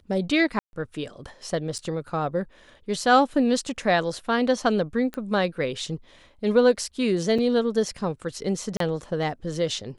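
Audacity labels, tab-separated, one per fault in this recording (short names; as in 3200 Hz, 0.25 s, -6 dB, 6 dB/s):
0.590000	0.730000	gap 0.141 s
1.780000	1.790000	gap 7.7 ms
5.140000	5.140000	pop -19 dBFS
7.380000	7.380000	gap 4.9 ms
8.770000	8.800000	gap 33 ms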